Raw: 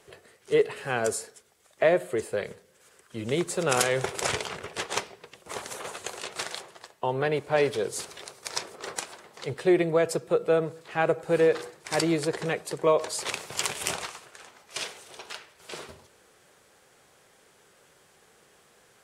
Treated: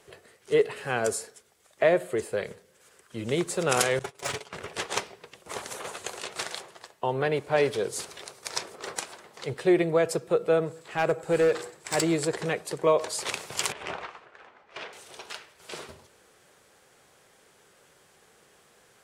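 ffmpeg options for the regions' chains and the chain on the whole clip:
-filter_complex "[0:a]asettb=1/sr,asplit=3[a][b][c];[a]atrim=end=3.994[d];[b]atrim=start=3.99:end=4.53,asetpts=PTS-STARTPTS,afade=t=in:d=0.004:c=qsin,afade=t=out:st=0.536:d=0.004:c=qsin,aecho=1:1:7.1:0.5,atrim=end_sample=23814,volume=21dB,asoftclip=hard,volume=-21dB,agate=range=-33dB:threshold=-24dB:ratio=3:release=100:detection=peak[e];[c]atrim=start=4.526[f];[d][e]acrossfade=d=0.004:c1=hsin:c2=qsin[g];[g][f]acrossfade=d=0.004:c1=qsin:c2=hsin,asettb=1/sr,asplit=3[h][i][j];[h]atrim=end=10.664[k];[i]atrim=start=10.66:end=12.35,asetpts=PTS-STARTPTS,afade=t=in:d=0.004:c=qsin,afade=t=out:st=1.686:d=0.004:c=qsin,equalizer=f=7.7k:w=7.3:g=9.5,asoftclip=type=hard:threshold=-17.5dB[l];[j]atrim=start=12.346[m];[k][l]acrossfade=d=0.004:c1=hsin:c2=qsin[n];[n][m]acrossfade=d=0.004:c1=qsin:c2=hsin,asettb=1/sr,asplit=3[o][p][q];[o]atrim=end=13.724[r];[p]atrim=start=13.72:end=14.93,asetpts=PTS-STARTPTS,afade=t=in:d=0.004:c=qsin,afade=t=out:st=1.206:d=0.004:c=qsin,lowpass=2.1k,equalizer=f=120:t=o:w=2.1:g=-6[s];[q]atrim=start=14.926[t];[r][s]acrossfade=d=0.004:c1=hsin:c2=qsin[u];[u][t]acrossfade=d=0.004:c1=qsin:c2=hsin"

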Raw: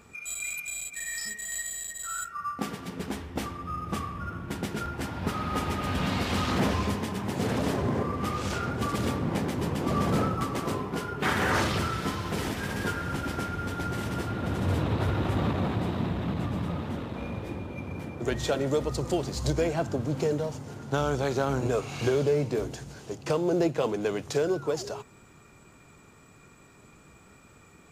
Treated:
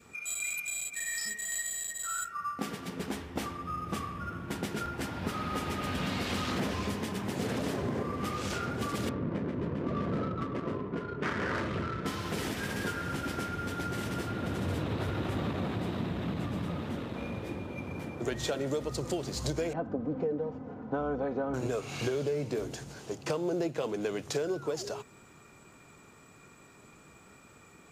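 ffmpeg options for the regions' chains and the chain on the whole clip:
-filter_complex "[0:a]asettb=1/sr,asplit=3[a][b][c];[a]atrim=end=9.094[d];[b]atrim=start=9.09:end=12.06,asetpts=PTS-STARTPTS,afade=t=in:d=0.004:c=qsin,afade=t=out:st=2.966:d=0.004:c=qsin,equalizer=f=11k:w=1.5:g=5.5,bandreject=f=790:w=5.2,adynamicsmooth=sensitivity=1.5:basefreq=1.1k[e];[c]atrim=start=12.056[f];[d][e]acrossfade=d=0.004:c1=hsin:c2=qsin[g];[g][f]acrossfade=d=0.004:c1=qsin:c2=hsin,asettb=1/sr,asplit=3[h][i][j];[h]atrim=end=19.734[k];[i]atrim=start=19.73:end=21.54,asetpts=PTS-STARTPTS,afade=t=in:d=0.004:c=qsin,afade=t=out:st=1.806:d=0.004:c=qsin,lowpass=1.1k,aecho=1:1:4:0.63,atrim=end_sample=79821[l];[j]atrim=start=21.536[m];[k][l]acrossfade=d=0.004:c1=hsin:c2=qsin[n];[n][m]acrossfade=d=0.004:c1=qsin:c2=hsin,lowshelf=f=110:g=-8,acompressor=threshold=-29dB:ratio=3,adynamicequalizer=threshold=0.00501:dfrequency=900:dqfactor=1.5:tfrequency=900:tqfactor=1.5:attack=5:release=100:ratio=0.375:range=2:mode=cutabove:tftype=bell"

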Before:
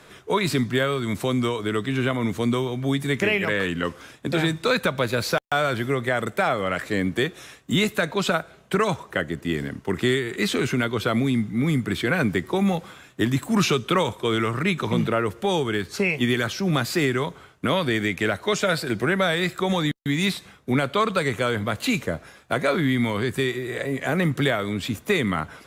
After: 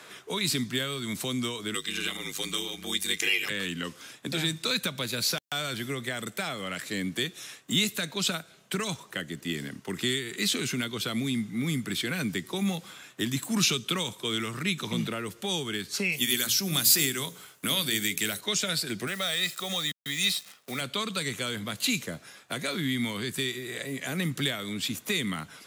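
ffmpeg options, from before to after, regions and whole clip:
-filter_complex "[0:a]asettb=1/sr,asplit=3[a][b][c];[a]atrim=end=1.744[d];[b]atrim=start=1.74:end=3.5,asetpts=PTS-STARTPTS,afade=t=in:d=0.004:c=qsin,afade=t=out:st=1.756:d=0.004:c=qsin,tiltshelf=f=1.1k:g=-6,aecho=1:1:2.5:0.83,atrim=end_sample=77616,aeval=exprs='val(0)*sin(2*PI*50*n/s)':c=same[e];[c]atrim=start=3.496[f];[d][e]acrossfade=d=0.004:c1=hsin:c2=qsin[g];[g][f]acrossfade=d=0.004:c1=qsin:c2=hsin,asettb=1/sr,asplit=3[h][i][j];[h]atrim=end=16.124[k];[i]atrim=start=16.12:end=18.41,asetpts=PTS-STARTPTS,afade=t=in:d=0.004:c=qsin,afade=t=out:st=2.286:d=0.004:c=qsin,aemphasis=mode=production:type=50fm,bandreject=f=60:t=h:w=6,bandreject=f=120:t=h:w=6,bandreject=f=180:t=h:w=6,bandreject=f=240:t=h:w=6,bandreject=f=300:t=h:w=6,bandreject=f=360:t=h:w=6,bandreject=f=420:t=h:w=6,bandreject=f=480:t=h:w=6,bandreject=f=540:t=h:w=6[l];[j]atrim=start=18.406[m];[k][l]acrossfade=d=0.004:c1=hsin:c2=qsin[n];[n][m]acrossfade=d=0.004:c1=qsin:c2=hsin,asettb=1/sr,asplit=3[o][p][q];[o]atrim=end=19.074[r];[p]atrim=start=19.07:end=20.81,asetpts=PTS-STARTPTS,afade=t=in:d=0.004:c=qsin,afade=t=out:st=1.736:d=0.004:c=qsin,highpass=f=390:p=1,aecho=1:1:1.6:0.49,atrim=end_sample=76734,acrusher=bits=8:dc=4:mix=0:aa=0.000001[s];[q]atrim=start=20.806[t];[r][s]acrossfade=d=0.004:c1=hsin:c2=qsin[u];[u][t]acrossfade=d=0.004:c1=qsin:c2=hsin,highpass=160,tiltshelf=f=770:g=-4,acrossover=split=270|3000[v][w][x];[w]acompressor=threshold=-48dB:ratio=2[y];[v][y][x]amix=inputs=3:normalize=0"

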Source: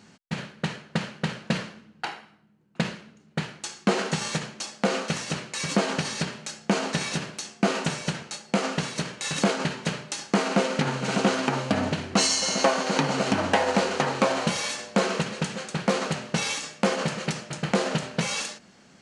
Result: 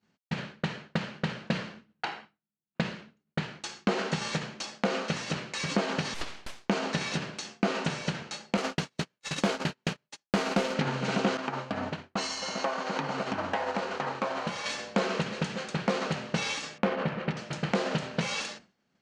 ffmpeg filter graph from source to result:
-filter_complex "[0:a]asettb=1/sr,asplit=3[a][b][c];[a]atrim=end=6.144[d];[b]atrim=start=6.14:end=6.69,asetpts=PTS-STARTPTS,afade=t=in:d=0.004:c=qsin,afade=t=out:st=0.546:d=0.004:c=qsin,highpass=f=320:p=1,aeval=exprs='abs(val(0))':c=same[e];[c]atrim=start=6.686[f];[d][e]acrossfade=d=0.004:c1=hsin:c2=qsin[g];[g][f]acrossfade=d=0.004:c1=qsin:c2=hsin,asettb=1/sr,asplit=3[h][i][j];[h]atrim=end=8.574[k];[i]atrim=start=8.57:end=10.75,asetpts=PTS-STARTPTS,afade=t=in:d=0.004:c=qsin,afade=t=out:st=2.176:d=0.004:c=qsin,agate=range=-39dB:threshold=-30dB:ratio=16:release=100:detection=peak,highshelf=f=8.6k:g=10,acrusher=bits=2:mode=log:mix=0:aa=0.000001[l];[j]atrim=start=10.746[m];[k][l]acrossfade=d=0.004:c1=hsin:c2=qsin[n];[n][m]acrossfade=d=0.004:c1=qsin:c2=hsin,asettb=1/sr,asplit=3[o][p][q];[o]atrim=end=11.374[r];[p]atrim=start=11.37:end=14.66,asetpts=PTS-STARTPTS,afade=t=in:d=0.004:c=qsin,afade=t=out:st=3.286:d=0.004:c=qsin,equalizer=f=1.1k:t=o:w=1.6:g=5.5,acompressor=threshold=-22dB:ratio=3:attack=3.2:release=140:knee=1:detection=peak,agate=range=-33dB:threshold=-22dB:ratio=3:release=100:detection=peak[s];[q]atrim=start=14.656[t];[r][s]acrossfade=d=0.004:c1=hsin:c2=qsin[u];[u][t]acrossfade=d=0.004:c1=qsin:c2=hsin,asettb=1/sr,asplit=3[v][w][x];[v]atrim=end=16.784[y];[w]atrim=start=16.78:end=17.37,asetpts=PTS-STARTPTS,afade=t=in:d=0.004:c=qsin,afade=t=out:st=0.586:d=0.004:c=qsin,adynamicsmooth=sensitivity=3.5:basefreq=2.1k,bass=f=250:g=1,treble=f=4k:g=-9[z];[x]atrim=start=17.366[aa];[y][z]acrossfade=d=0.004:c1=hsin:c2=qsin[ab];[ab][aa]acrossfade=d=0.004:c1=qsin:c2=hsin,agate=range=-33dB:threshold=-41dB:ratio=3:detection=peak,acompressor=threshold=-30dB:ratio=1.5,lowpass=5.2k"

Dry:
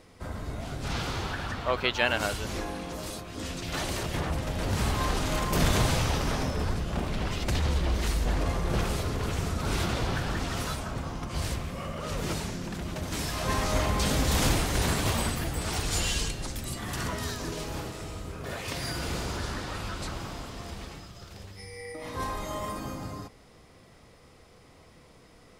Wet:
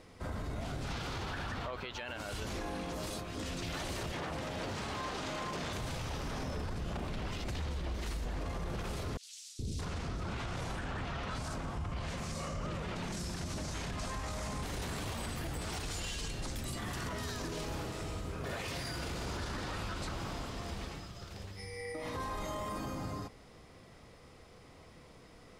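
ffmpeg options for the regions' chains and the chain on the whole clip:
-filter_complex "[0:a]asettb=1/sr,asplit=3[a][b][c];[a]atrim=end=4.124[d];[b]atrim=start=4.12:end=5.73,asetpts=PTS-STARTPTS,afade=t=in:d=0.004:c=qsin,afade=t=out:st=1.606:d=0.004:c=qsin,highpass=f=240:p=1,acrossover=split=7900[e][f];[f]acompressor=threshold=-57dB:ratio=4:attack=1:release=60[g];[e][g]amix=inputs=2:normalize=0[h];[c]atrim=start=5.726[i];[d][h]acrossfade=d=0.004:c1=hsin:c2=qsin[j];[j][i]acrossfade=d=0.004:c1=qsin:c2=hsin,asettb=1/sr,asplit=3[k][l][m];[k]atrim=end=9.174[n];[l]atrim=start=9.17:end=14.63,asetpts=PTS-STARTPTS,afade=t=in:d=0.004:c=qsin,afade=t=out:st=5.456:d=0.004:c=qsin,lowpass=9.1k,acrossover=split=360|4100[o][p][q];[o]adelay=420[r];[p]adelay=620[s];[r][s][q]amix=inputs=3:normalize=0,atrim=end_sample=240786[t];[m]atrim=start=14.626[u];[n][t]acrossfade=d=0.004:c1=hsin:c2=qsin[v];[v][u]acrossfade=d=0.004:c1=qsin:c2=hsin,highshelf=f=9.1k:g=-5.5,acompressor=threshold=-31dB:ratio=6,alimiter=level_in=5.5dB:limit=-24dB:level=0:latency=1:release=11,volume=-5.5dB,volume=-1dB"

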